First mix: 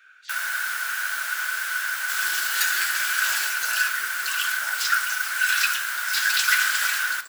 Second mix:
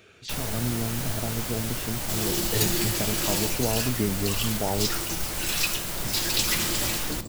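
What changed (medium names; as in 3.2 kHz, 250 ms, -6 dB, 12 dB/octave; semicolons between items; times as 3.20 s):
speech +8.5 dB; master: remove resonant high-pass 1.5 kHz, resonance Q 15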